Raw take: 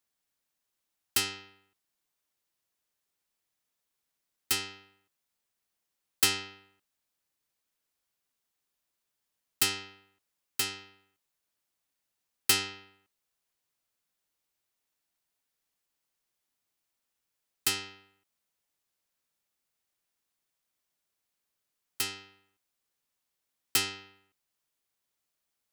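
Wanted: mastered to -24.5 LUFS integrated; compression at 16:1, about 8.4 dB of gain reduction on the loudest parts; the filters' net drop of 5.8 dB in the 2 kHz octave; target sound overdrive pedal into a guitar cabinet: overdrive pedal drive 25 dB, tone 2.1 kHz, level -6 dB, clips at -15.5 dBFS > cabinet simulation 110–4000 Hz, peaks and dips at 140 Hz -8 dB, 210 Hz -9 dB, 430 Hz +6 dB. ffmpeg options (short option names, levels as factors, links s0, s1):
-filter_complex "[0:a]equalizer=f=2000:t=o:g=-8,acompressor=threshold=0.0355:ratio=16,asplit=2[s0][s1];[s1]highpass=f=720:p=1,volume=17.8,asoftclip=type=tanh:threshold=0.168[s2];[s0][s2]amix=inputs=2:normalize=0,lowpass=f=2100:p=1,volume=0.501,highpass=110,equalizer=f=140:t=q:w=4:g=-8,equalizer=f=210:t=q:w=4:g=-9,equalizer=f=430:t=q:w=4:g=6,lowpass=f=4000:w=0.5412,lowpass=f=4000:w=1.3066,volume=3.35"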